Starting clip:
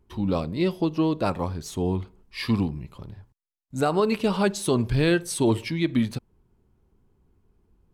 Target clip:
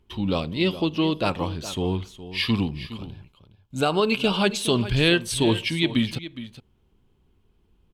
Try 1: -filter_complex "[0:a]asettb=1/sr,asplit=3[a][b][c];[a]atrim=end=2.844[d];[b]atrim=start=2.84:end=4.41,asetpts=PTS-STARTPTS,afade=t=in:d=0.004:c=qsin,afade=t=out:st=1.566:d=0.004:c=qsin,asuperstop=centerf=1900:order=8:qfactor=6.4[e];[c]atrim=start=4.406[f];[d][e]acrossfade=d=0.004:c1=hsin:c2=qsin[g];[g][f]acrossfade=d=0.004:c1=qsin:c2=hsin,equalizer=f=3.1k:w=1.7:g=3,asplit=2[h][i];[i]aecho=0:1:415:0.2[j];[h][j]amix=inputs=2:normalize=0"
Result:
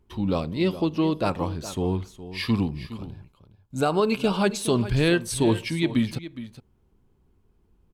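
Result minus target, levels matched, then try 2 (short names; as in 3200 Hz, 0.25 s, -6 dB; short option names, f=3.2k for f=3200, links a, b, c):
4000 Hz band -6.5 dB
-filter_complex "[0:a]asettb=1/sr,asplit=3[a][b][c];[a]atrim=end=2.844[d];[b]atrim=start=2.84:end=4.41,asetpts=PTS-STARTPTS,afade=t=in:d=0.004:c=qsin,afade=t=out:st=1.566:d=0.004:c=qsin,asuperstop=centerf=1900:order=8:qfactor=6.4[e];[c]atrim=start=4.406[f];[d][e]acrossfade=d=0.004:c1=hsin:c2=qsin[g];[g][f]acrossfade=d=0.004:c1=qsin:c2=hsin,equalizer=f=3.1k:w=1.7:g=13,asplit=2[h][i];[i]aecho=0:1:415:0.2[j];[h][j]amix=inputs=2:normalize=0"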